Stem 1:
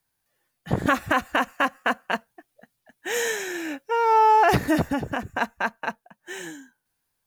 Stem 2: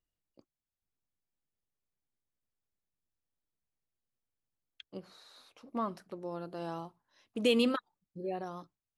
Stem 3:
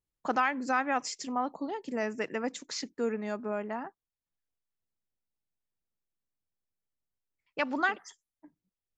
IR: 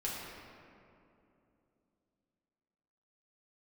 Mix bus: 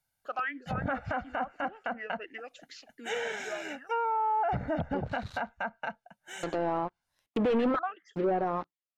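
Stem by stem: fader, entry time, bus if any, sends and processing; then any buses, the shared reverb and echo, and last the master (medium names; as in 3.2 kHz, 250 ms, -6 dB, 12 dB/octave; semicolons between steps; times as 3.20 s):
-6.0 dB, 0.00 s, no send, comb 1.4 ms, depth 73%
-1.5 dB, 0.00 s, muted 5.55–6.43 s, no send, high-pass 370 Hz 6 dB/octave; waveshaping leveller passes 5
+3.0 dB, 0.00 s, no send, tilt shelf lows -8 dB, about 820 Hz; talking filter a-i 2.8 Hz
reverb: none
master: low-pass that closes with the level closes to 1.4 kHz, closed at -25 dBFS; peak limiter -22.5 dBFS, peak gain reduction 10.5 dB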